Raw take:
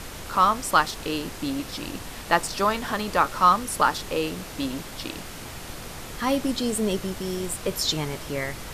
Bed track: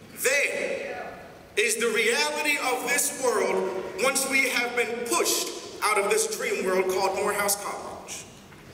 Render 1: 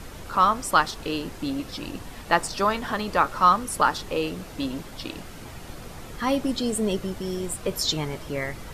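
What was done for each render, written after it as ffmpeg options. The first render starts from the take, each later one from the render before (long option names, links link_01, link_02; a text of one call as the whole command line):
ffmpeg -i in.wav -af "afftdn=noise_reduction=7:noise_floor=-39" out.wav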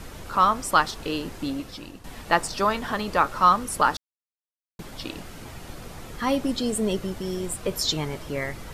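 ffmpeg -i in.wav -filter_complex "[0:a]asplit=4[link_01][link_02][link_03][link_04];[link_01]atrim=end=2.04,asetpts=PTS-STARTPTS,afade=type=out:start_time=1.44:duration=0.6:silence=0.266073[link_05];[link_02]atrim=start=2.04:end=3.97,asetpts=PTS-STARTPTS,afade=type=in:duration=0.004:curve=hsin:silence=0.266073,afade=type=out:start_time=1.926:duration=0.004:curve=hsin[link_06];[link_03]atrim=start=3.97:end=4.79,asetpts=PTS-STARTPTS,volume=0[link_07];[link_04]atrim=start=4.79,asetpts=PTS-STARTPTS,afade=type=in:duration=0.004:curve=hsin[link_08];[link_05][link_06][link_07][link_08]concat=n=4:v=0:a=1" out.wav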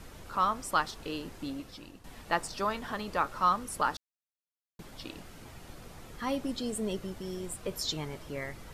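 ffmpeg -i in.wav -af "volume=-8.5dB" out.wav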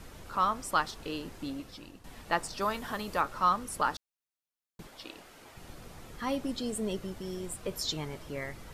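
ffmpeg -i in.wav -filter_complex "[0:a]asettb=1/sr,asplit=3[link_01][link_02][link_03];[link_01]atrim=end=2.614[link_04];[link_02]atrim=start=2.61:end=3.21,asetpts=PTS-STARTPTS,afade=type=in:duration=0.004:curve=qsin,afade=type=out:start_time=0.596:duration=0.004:curve=qsin,highshelf=frequency=9100:gain=10.5[link_05];[link_03]atrim=start=3.206[link_06];[link_04][link_05]acrossfade=duration=0.004:curve1=hsin:curve2=qsin[link_07];[link_07][link_06]acrossfade=duration=0.004:curve1=qsin:curve2=hsin,asettb=1/sr,asplit=3[link_08][link_09][link_10];[link_08]atrim=end=4.874[link_11];[link_09]atrim=start=4.87:end=5.57,asetpts=PTS-STARTPTS,afade=type=in:duration=0.004:curve=qsin,afade=type=out:start_time=0.696:duration=0.004:curve=qsin,bass=frequency=250:gain=-14,treble=frequency=4000:gain=-2[link_12];[link_10]atrim=start=5.566[link_13];[link_11][link_12]acrossfade=duration=0.004:curve1=hsin:curve2=qsin[link_14];[link_14][link_13]acrossfade=duration=0.004:curve1=qsin:curve2=hsin" out.wav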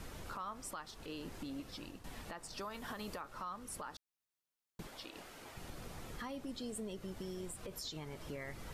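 ffmpeg -i in.wav -af "acompressor=threshold=-41dB:ratio=3,alimiter=level_in=10.5dB:limit=-24dB:level=0:latency=1:release=70,volume=-10.5dB" out.wav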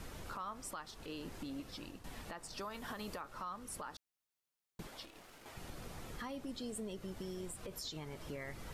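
ffmpeg -i in.wav -filter_complex "[0:a]asettb=1/sr,asplit=3[link_01][link_02][link_03];[link_01]atrim=end=5.054[link_04];[link_02]atrim=start=5.05:end=5.46,asetpts=PTS-STARTPTS,afade=type=in:duration=0.004:curve=qsin,afade=type=out:start_time=0.406:duration=0.004:curve=qsin,aeval=exprs='(tanh(355*val(0)+0.8)-tanh(0.8))/355':channel_layout=same[link_05];[link_03]atrim=start=5.456[link_06];[link_04][link_05]acrossfade=duration=0.004:curve1=hsin:curve2=qsin[link_07];[link_07][link_06]acrossfade=duration=0.004:curve1=qsin:curve2=hsin" out.wav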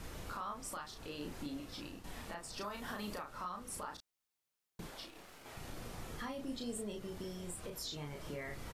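ffmpeg -i in.wav -filter_complex "[0:a]asplit=2[link_01][link_02];[link_02]adelay=34,volume=-3.5dB[link_03];[link_01][link_03]amix=inputs=2:normalize=0" out.wav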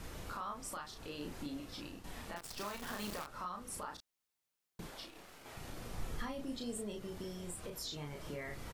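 ffmpeg -i in.wav -filter_complex "[0:a]asettb=1/sr,asplit=3[link_01][link_02][link_03];[link_01]atrim=end=2.364[link_04];[link_02]atrim=start=2.36:end=3.27,asetpts=PTS-STARTPTS,afade=type=in:duration=0.004:curve=qsin,afade=type=out:start_time=0.906:duration=0.004:curve=qsin,acrusher=bits=8:dc=4:mix=0:aa=0.000001[link_05];[link_03]atrim=start=3.266[link_06];[link_04][link_05]acrossfade=duration=0.004:curve1=hsin:curve2=qsin[link_07];[link_07][link_06]acrossfade=duration=0.004:curve1=qsin:curve2=hsin,asettb=1/sr,asplit=3[link_08][link_09][link_10];[link_08]atrim=end=5.914[link_11];[link_09]atrim=start=5.91:end=6.43,asetpts=PTS-STARTPTS,afade=type=in:duration=0.004:curve=qsin,afade=type=out:start_time=0.516:duration=0.004:curve=qsin,lowshelf=frequency=61:gain=11.5[link_12];[link_10]atrim=start=6.426[link_13];[link_11][link_12]acrossfade=duration=0.004:curve1=hsin:curve2=qsin[link_14];[link_14][link_13]acrossfade=duration=0.004:curve1=qsin:curve2=hsin" out.wav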